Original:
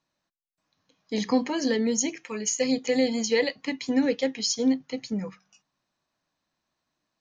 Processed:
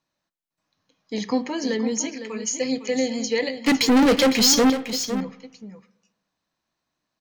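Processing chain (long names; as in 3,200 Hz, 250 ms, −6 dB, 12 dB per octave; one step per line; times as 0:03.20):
0:03.66–0:04.70: leveller curve on the samples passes 5
single-tap delay 506 ms −10.5 dB
on a send at −17 dB: convolution reverb RT60 1.0 s, pre-delay 36 ms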